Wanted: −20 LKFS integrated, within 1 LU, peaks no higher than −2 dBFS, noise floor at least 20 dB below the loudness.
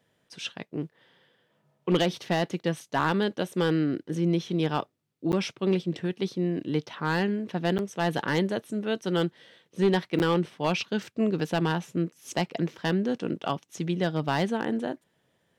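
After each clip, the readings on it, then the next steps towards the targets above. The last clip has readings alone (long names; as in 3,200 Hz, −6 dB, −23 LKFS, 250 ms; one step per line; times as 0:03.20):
share of clipped samples 0.4%; peaks flattened at −15.5 dBFS; number of dropouts 3; longest dropout 9.5 ms; integrated loudness −28.5 LKFS; sample peak −15.5 dBFS; target loudness −20.0 LKFS
→ clipped peaks rebuilt −15.5 dBFS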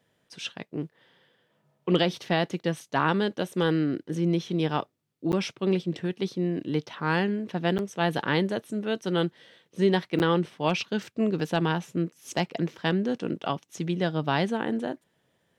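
share of clipped samples 0.0%; number of dropouts 3; longest dropout 9.5 ms
→ repair the gap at 0:05.32/0:07.78/0:10.19, 9.5 ms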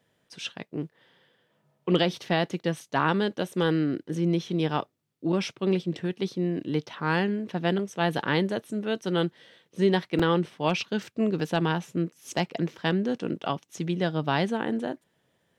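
number of dropouts 0; integrated loudness −28.0 LKFS; sample peak −9.0 dBFS; target loudness −20.0 LKFS
→ level +8 dB
brickwall limiter −2 dBFS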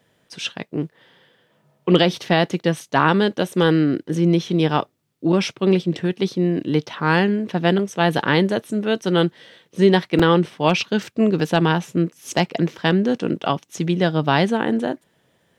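integrated loudness −20.0 LKFS; sample peak −2.0 dBFS; background noise floor −64 dBFS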